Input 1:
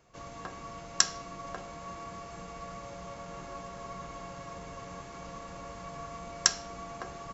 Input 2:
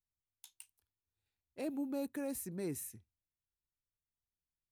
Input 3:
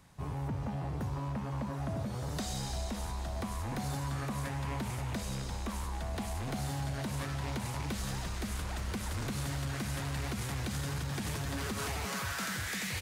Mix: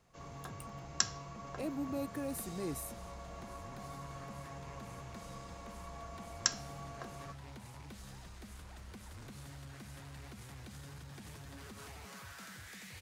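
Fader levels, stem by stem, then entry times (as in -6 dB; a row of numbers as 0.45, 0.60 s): -7.0, 0.0, -14.0 dB; 0.00, 0.00, 0.00 s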